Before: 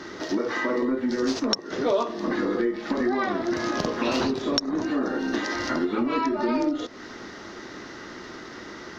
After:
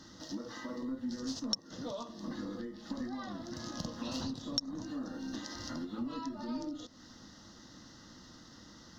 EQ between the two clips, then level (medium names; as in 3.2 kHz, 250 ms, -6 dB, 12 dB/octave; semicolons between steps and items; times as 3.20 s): high-order bell 1 kHz -11.5 dB; static phaser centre 960 Hz, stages 4; -5.5 dB